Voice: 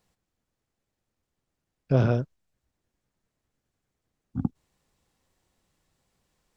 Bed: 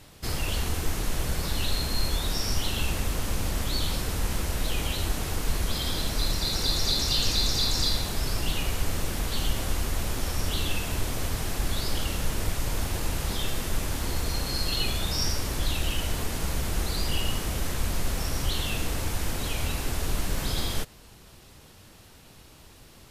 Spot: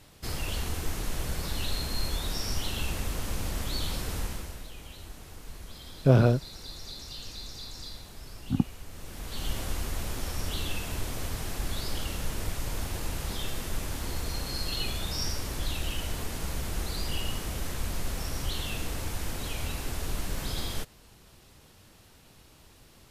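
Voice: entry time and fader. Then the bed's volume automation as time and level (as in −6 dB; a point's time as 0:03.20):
4.15 s, +2.0 dB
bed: 0:04.19 −4 dB
0:04.71 −16.5 dB
0:08.89 −16.5 dB
0:09.52 −4.5 dB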